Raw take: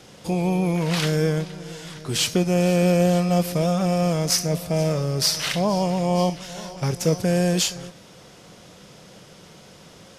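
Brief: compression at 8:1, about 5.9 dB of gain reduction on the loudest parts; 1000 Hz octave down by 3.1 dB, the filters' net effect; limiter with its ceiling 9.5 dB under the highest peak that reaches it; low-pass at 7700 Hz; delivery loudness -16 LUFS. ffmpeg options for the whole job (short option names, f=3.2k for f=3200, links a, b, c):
-af "lowpass=7.7k,equalizer=f=1k:t=o:g=-5,acompressor=threshold=-21dB:ratio=8,volume=14dB,alimiter=limit=-7dB:level=0:latency=1"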